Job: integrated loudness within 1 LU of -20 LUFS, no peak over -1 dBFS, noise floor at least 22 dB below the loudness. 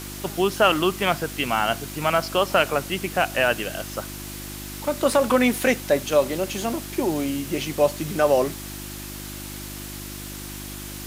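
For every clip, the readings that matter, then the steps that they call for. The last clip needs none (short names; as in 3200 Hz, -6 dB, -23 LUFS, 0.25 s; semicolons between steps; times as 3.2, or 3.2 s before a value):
hum 50 Hz; harmonics up to 350 Hz; hum level -35 dBFS; noise floor -35 dBFS; noise floor target -45 dBFS; loudness -22.5 LUFS; peak -6.0 dBFS; loudness target -20.0 LUFS
-> de-hum 50 Hz, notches 7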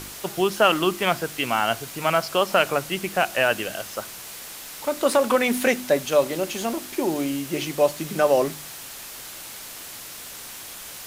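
hum none; noise floor -39 dBFS; noise floor target -45 dBFS
-> noise print and reduce 6 dB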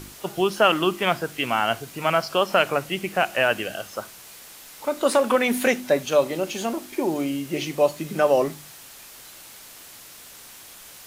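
noise floor -45 dBFS; loudness -23.0 LUFS; peak -6.0 dBFS; loudness target -20.0 LUFS
-> gain +3 dB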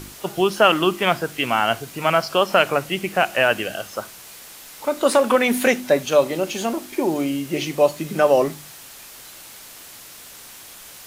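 loudness -20.0 LUFS; peak -3.0 dBFS; noise floor -42 dBFS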